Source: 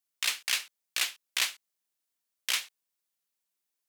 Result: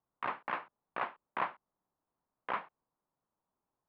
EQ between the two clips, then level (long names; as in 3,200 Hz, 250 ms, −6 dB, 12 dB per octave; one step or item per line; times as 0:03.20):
transistor ladder low-pass 1,200 Hz, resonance 45%
high-frequency loss of the air 120 metres
low-shelf EQ 250 Hz +11.5 dB
+15.0 dB